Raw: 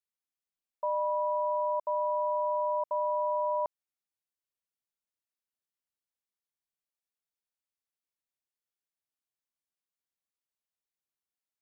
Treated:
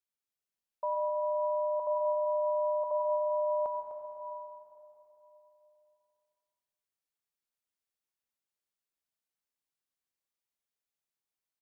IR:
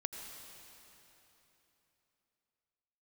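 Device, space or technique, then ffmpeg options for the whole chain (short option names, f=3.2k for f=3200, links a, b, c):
cave: -filter_complex "[0:a]aecho=1:1:252:0.282[a];[1:a]atrim=start_sample=2205[b];[a][b]afir=irnorm=-1:irlink=0"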